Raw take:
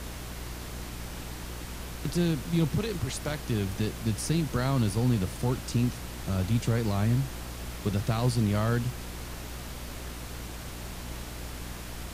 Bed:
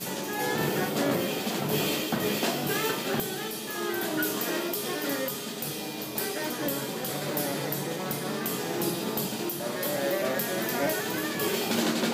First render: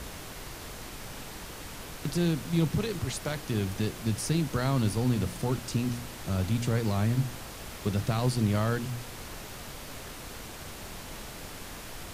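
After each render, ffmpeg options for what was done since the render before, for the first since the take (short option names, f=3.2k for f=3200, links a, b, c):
-af "bandreject=f=60:t=h:w=4,bandreject=f=120:t=h:w=4,bandreject=f=180:t=h:w=4,bandreject=f=240:t=h:w=4,bandreject=f=300:t=h:w=4,bandreject=f=360:t=h:w=4"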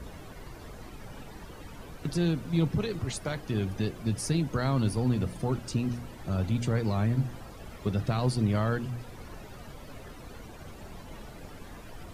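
-af "afftdn=nr=13:nf=-43"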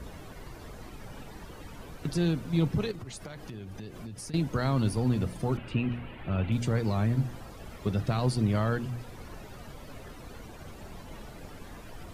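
-filter_complex "[0:a]asettb=1/sr,asplit=3[a][b][c];[a]atrim=end=2.914[d];[b]atrim=start=2.91:end=4.34,asetpts=PTS-STARTPTS,afade=t=in:d=0.004:c=qsin,afade=t=out:st=1.426:d=0.004:c=qsin,acompressor=threshold=-37dB:ratio=12:attack=3.2:release=140:knee=1:detection=peak[e];[c]atrim=start=4.336[f];[d][e]acrossfade=d=0.004:c1=hsin:c2=qsin[g];[g][f]acrossfade=d=0.004:c1=qsin:c2=hsin,asettb=1/sr,asplit=3[h][i][j];[h]atrim=end=5.574[k];[i]atrim=start=5.57:end=6.52,asetpts=PTS-STARTPTS,afade=t=in:d=0.004:c=qsin,afade=t=out:st=0.946:d=0.004:c=qsin,highshelf=f=4k:t=q:w=3:g=-14[l];[j]atrim=start=6.516[m];[k][l]acrossfade=d=0.004:c1=hsin:c2=qsin[n];[n][m]acrossfade=d=0.004:c1=qsin:c2=hsin"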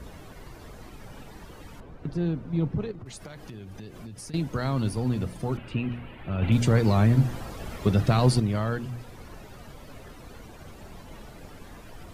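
-filter_complex "[0:a]asettb=1/sr,asplit=3[a][b][c];[a]atrim=end=1.804[d];[b]atrim=start=1.8:end=3.06,asetpts=PTS-STARTPTS,afade=t=in:d=0.004:c=qsin,afade=t=out:st=1.256:d=0.004:c=qsin,lowpass=f=1k:p=1[e];[c]atrim=start=3.056[f];[d][e]acrossfade=d=0.004:c1=hsin:c2=qsin[g];[g][f]acrossfade=d=0.004:c1=qsin:c2=hsin,asettb=1/sr,asplit=3[h][i][j];[h]atrim=end=6.424[k];[i]atrim=start=6.42:end=8.4,asetpts=PTS-STARTPTS,afade=t=in:d=0.004:c=qsin,afade=t=out:st=1.976:d=0.004:c=qsin,acontrast=84[l];[j]atrim=start=8.396[m];[k][l]acrossfade=d=0.004:c1=hsin:c2=qsin[n];[n][m]acrossfade=d=0.004:c1=qsin:c2=hsin"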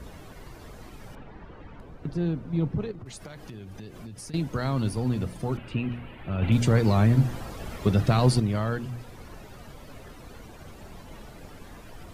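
-filter_complex "[0:a]asettb=1/sr,asplit=3[a][b][c];[a]atrim=end=1.154[d];[b]atrim=start=1.15:end=1.8,asetpts=PTS-STARTPTS,afade=t=in:d=0.004:c=qsin,afade=t=out:st=0.646:d=0.004:c=qsin,lowpass=2.2k[e];[c]atrim=start=1.796[f];[d][e]acrossfade=d=0.004:c1=hsin:c2=qsin[g];[g][f]acrossfade=d=0.004:c1=qsin:c2=hsin"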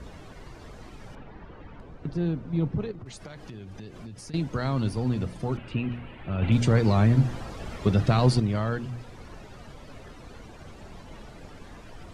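-af "lowpass=7.7k"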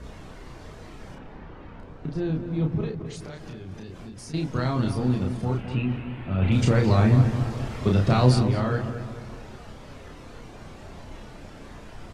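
-filter_complex "[0:a]asplit=2[a][b];[b]adelay=32,volume=-3dB[c];[a][c]amix=inputs=2:normalize=0,asplit=2[d][e];[e]adelay=215,lowpass=f=2.2k:p=1,volume=-9dB,asplit=2[f][g];[g]adelay=215,lowpass=f=2.2k:p=1,volume=0.53,asplit=2[h][i];[i]adelay=215,lowpass=f=2.2k:p=1,volume=0.53,asplit=2[j][k];[k]adelay=215,lowpass=f=2.2k:p=1,volume=0.53,asplit=2[l][m];[m]adelay=215,lowpass=f=2.2k:p=1,volume=0.53,asplit=2[n][o];[o]adelay=215,lowpass=f=2.2k:p=1,volume=0.53[p];[d][f][h][j][l][n][p]amix=inputs=7:normalize=0"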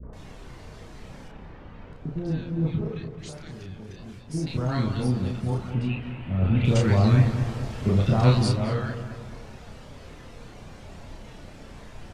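-filter_complex "[0:a]acrossover=split=400|1200[a][b][c];[b]adelay=30[d];[c]adelay=130[e];[a][d][e]amix=inputs=3:normalize=0"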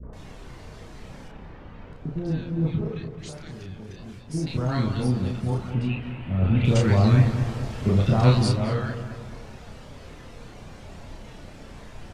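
-af "volume=1dB"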